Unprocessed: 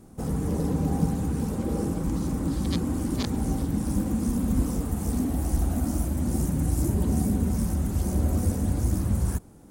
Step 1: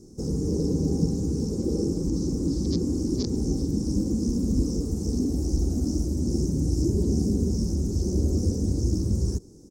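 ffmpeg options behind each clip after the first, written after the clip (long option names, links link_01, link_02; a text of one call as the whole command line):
ffmpeg -i in.wav -filter_complex "[0:a]firequalizer=gain_entry='entry(240,0);entry(380,8);entry(660,-12);entry(1600,-19);entry(3200,-15);entry(5400,14);entry(10000,-7)':delay=0.05:min_phase=1,acrossover=split=5100[link_01][link_02];[link_02]acompressor=threshold=-46dB:ratio=4:attack=1:release=60[link_03];[link_01][link_03]amix=inputs=2:normalize=0" out.wav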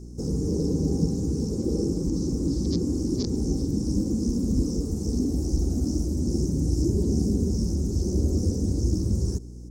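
ffmpeg -i in.wav -af "aeval=exprs='val(0)+0.0112*(sin(2*PI*60*n/s)+sin(2*PI*2*60*n/s)/2+sin(2*PI*3*60*n/s)/3+sin(2*PI*4*60*n/s)/4+sin(2*PI*5*60*n/s)/5)':channel_layout=same" out.wav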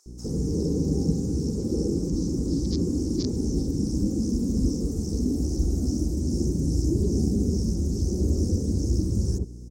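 ffmpeg -i in.wav -filter_complex "[0:a]acrossover=split=950[link_01][link_02];[link_01]adelay=60[link_03];[link_03][link_02]amix=inputs=2:normalize=0" out.wav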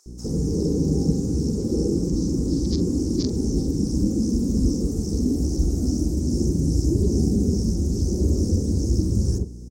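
ffmpeg -i in.wav -filter_complex "[0:a]asplit=2[link_01][link_02];[link_02]adelay=45,volume=-12.5dB[link_03];[link_01][link_03]amix=inputs=2:normalize=0,volume=3dB" out.wav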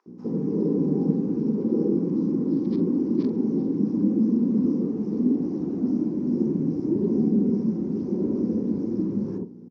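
ffmpeg -i in.wav -af "highpass=frequency=180:width=0.5412,highpass=frequency=180:width=1.3066,equalizer=frequency=220:width_type=q:width=4:gain=4,equalizer=frequency=640:width_type=q:width=4:gain=-4,equalizer=frequency=990:width_type=q:width=4:gain=8,lowpass=frequency=2600:width=0.5412,lowpass=frequency=2600:width=1.3066" out.wav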